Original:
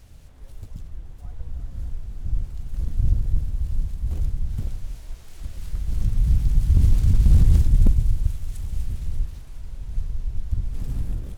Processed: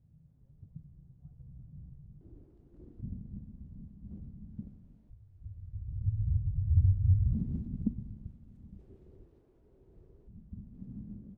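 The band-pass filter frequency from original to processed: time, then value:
band-pass filter, Q 4.7
150 Hz
from 2.21 s 340 Hz
from 3.01 s 210 Hz
from 5.10 s 100 Hz
from 7.33 s 220 Hz
from 8.79 s 380 Hz
from 10.28 s 210 Hz

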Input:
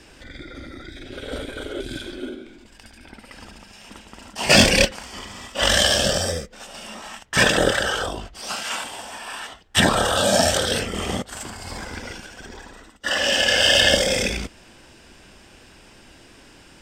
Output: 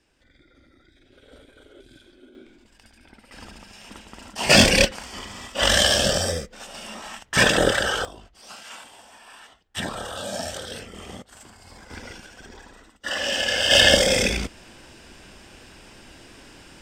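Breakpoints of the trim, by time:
-19 dB
from 2.35 s -7.5 dB
from 3.32 s -0.5 dB
from 8.05 s -13 dB
from 11.90 s -5 dB
from 13.71 s +1.5 dB

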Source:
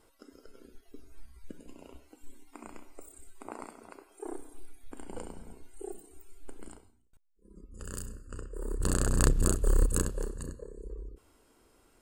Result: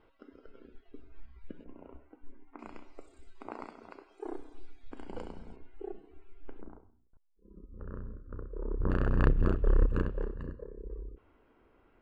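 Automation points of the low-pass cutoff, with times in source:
low-pass 24 dB/octave
3.2 kHz
from 1.64 s 1.9 kHz
from 2.59 s 5 kHz
from 5.56 s 2.8 kHz
from 6.61 s 1.3 kHz
from 8.90 s 2.6 kHz

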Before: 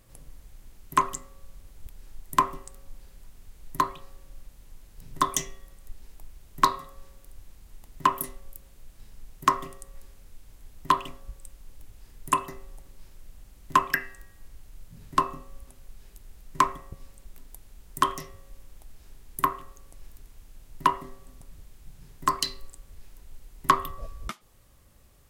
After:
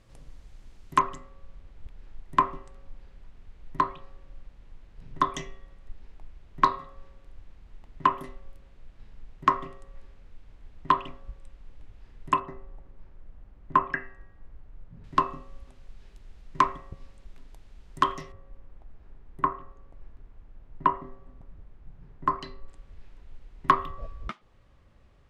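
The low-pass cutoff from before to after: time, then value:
5.3 kHz
from 0.99 s 2.8 kHz
from 12.40 s 1.5 kHz
from 15.04 s 4 kHz
from 18.32 s 1.5 kHz
from 22.68 s 2.9 kHz

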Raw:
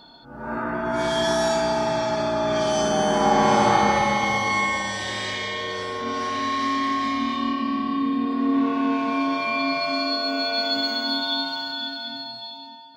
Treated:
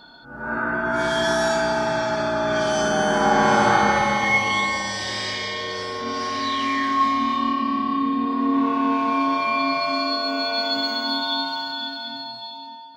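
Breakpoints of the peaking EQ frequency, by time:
peaking EQ +10.5 dB 0.27 oct
4.16 s 1.5 kHz
4.77 s 5 kHz
6.39 s 5 kHz
7.05 s 1 kHz

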